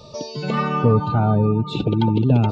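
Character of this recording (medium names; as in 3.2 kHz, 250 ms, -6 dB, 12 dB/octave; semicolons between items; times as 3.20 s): noise floor -40 dBFS; spectral tilt -7.5 dB/octave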